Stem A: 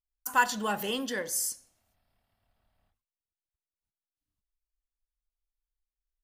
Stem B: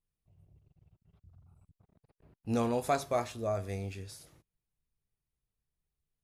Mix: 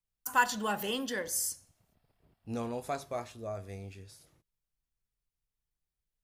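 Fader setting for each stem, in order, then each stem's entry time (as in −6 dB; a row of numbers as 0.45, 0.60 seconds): −2.0, −6.0 decibels; 0.00, 0.00 seconds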